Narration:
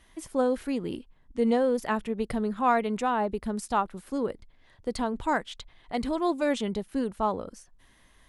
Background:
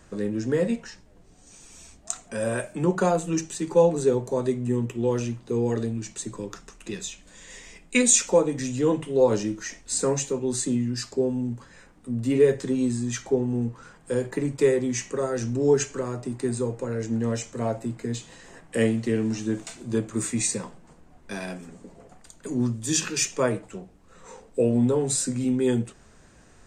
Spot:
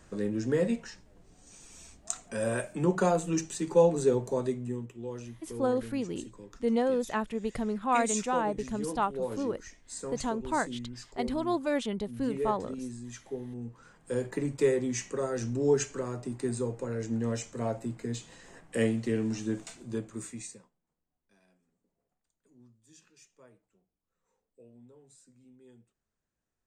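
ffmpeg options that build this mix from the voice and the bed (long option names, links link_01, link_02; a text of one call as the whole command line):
ffmpeg -i stem1.wav -i stem2.wav -filter_complex "[0:a]adelay=5250,volume=-3dB[link_01];[1:a]volume=6dB,afade=type=out:start_time=4.29:duration=0.59:silence=0.281838,afade=type=in:start_time=13.56:duration=0.67:silence=0.334965,afade=type=out:start_time=19.51:duration=1.19:silence=0.0354813[link_02];[link_01][link_02]amix=inputs=2:normalize=0" out.wav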